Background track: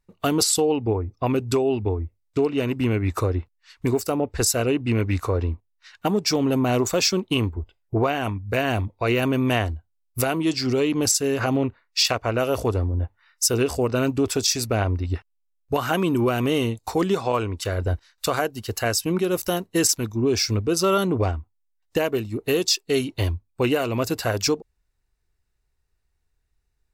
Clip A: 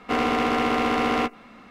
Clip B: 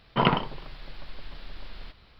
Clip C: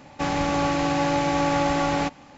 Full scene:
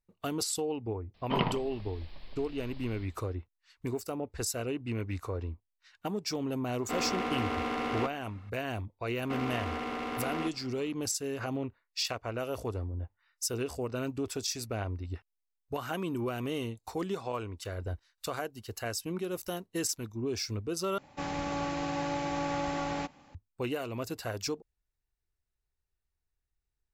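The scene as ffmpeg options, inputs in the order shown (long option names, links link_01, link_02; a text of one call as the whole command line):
ffmpeg -i bed.wav -i cue0.wav -i cue1.wav -i cue2.wav -filter_complex "[1:a]asplit=2[link_01][link_02];[0:a]volume=-12.5dB[link_03];[2:a]equalizer=frequency=1400:width_type=o:width=0.36:gain=-10[link_04];[link_02]alimiter=limit=-18dB:level=0:latency=1:release=71[link_05];[link_03]asplit=2[link_06][link_07];[link_06]atrim=end=20.984[link_08];[3:a]atrim=end=2.37,asetpts=PTS-STARTPTS,volume=-10.5dB[link_09];[link_07]atrim=start=23.346[link_10];[link_04]atrim=end=2.19,asetpts=PTS-STARTPTS,volume=-6.5dB,afade=type=in:duration=0.004:curve=hsin,afade=type=out:start_time=2.186:duration=0.004:curve=hsin,adelay=1140[link_11];[link_01]atrim=end=1.7,asetpts=PTS-STARTPTS,volume=-10.5dB,afade=type=in:duration=0.004:curve=hsin,afade=type=out:start_time=1.696:duration=0.004:curve=hsin,adelay=6800[link_12];[link_05]atrim=end=1.7,asetpts=PTS-STARTPTS,volume=-8.5dB,afade=type=in:duration=0.004:curve=hsin,afade=type=out:start_time=1.696:duration=0.004:curve=hsin,adelay=9210[link_13];[link_08][link_09]acrossfade=duration=0.004:curve1=hsin:curve2=hsin[link_14];[link_14][link_10]acrossfade=duration=0.004:curve1=hsin:curve2=hsin[link_15];[link_15][link_11][link_12][link_13]amix=inputs=4:normalize=0" out.wav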